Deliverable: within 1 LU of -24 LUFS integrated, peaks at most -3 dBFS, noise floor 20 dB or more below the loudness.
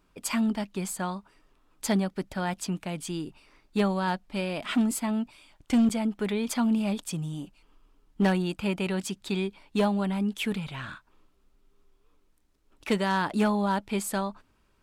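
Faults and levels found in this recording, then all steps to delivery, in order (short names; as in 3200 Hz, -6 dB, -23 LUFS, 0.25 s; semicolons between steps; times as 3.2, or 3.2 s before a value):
clipped 0.4%; flat tops at -17.5 dBFS; dropouts 1; longest dropout 7.0 ms; loudness -29.0 LUFS; peak -17.5 dBFS; loudness target -24.0 LUFS
-> clip repair -17.5 dBFS; interpolate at 5.89, 7 ms; gain +5 dB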